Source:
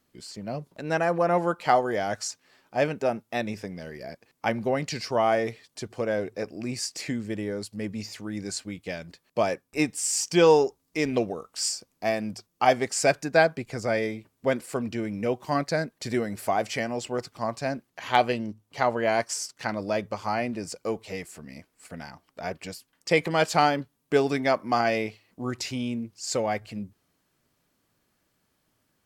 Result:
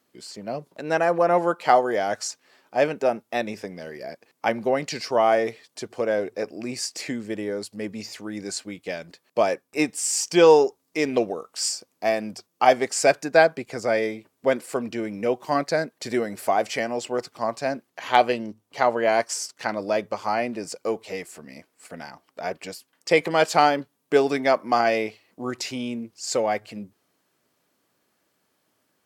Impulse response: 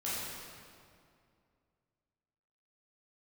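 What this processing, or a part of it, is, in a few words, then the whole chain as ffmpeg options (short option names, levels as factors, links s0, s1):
filter by subtraction: -filter_complex "[0:a]asplit=2[s0][s1];[s1]lowpass=440,volume=-1[s2];[s0][s2]amix=inputs=2:normalize=0,volume=1.26"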